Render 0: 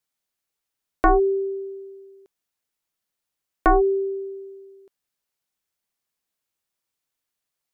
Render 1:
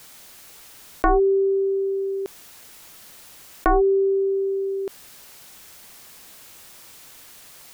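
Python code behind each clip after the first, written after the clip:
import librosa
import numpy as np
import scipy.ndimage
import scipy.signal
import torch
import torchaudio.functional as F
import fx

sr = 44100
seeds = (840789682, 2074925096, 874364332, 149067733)

y = fx.env_flatten(x, sr, amount_pct=70)
y = F.gain(torch.from_numpy(y), -2.5).numpy()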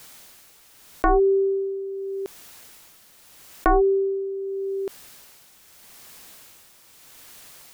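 y = x * (1.0 - 0.58 / 2.0 + 0.58 / 2.0 * np.cos(2.0 * np.pi * 0.81 * (np.arange(len(x)) / sr)))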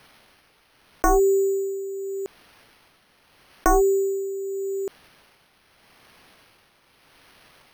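y = np.repeat(scipy.signal.resample_poly(x, 1, 6), 6)[:len(x)]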